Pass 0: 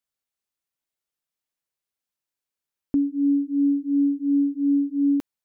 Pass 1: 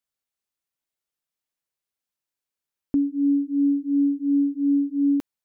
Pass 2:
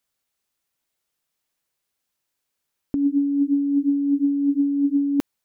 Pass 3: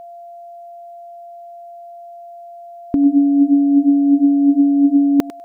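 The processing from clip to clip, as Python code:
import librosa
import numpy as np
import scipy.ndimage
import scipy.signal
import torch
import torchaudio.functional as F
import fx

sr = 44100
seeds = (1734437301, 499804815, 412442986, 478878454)

y1 = x
y2 = fx.over_compress(y1, sr, threshold_db=-25.0, ratio=-1.0)
y2 = F.gain(torch.from_numpy(y2), 5.0).numpy()
y3 = fx.echo_thinned(y2, sr, ms=99, feedback_pct=16, hz=420.0, wet_db=-13.5)
y3 = y3 + 10.0 ** (-41.0 / 20.0) * np.sin(2.0 * np.pi * 690.0 * np.arange(len(y3)) / sr)
y3 = F.gain(torch.from_numpy(y3), 7.5).numpy()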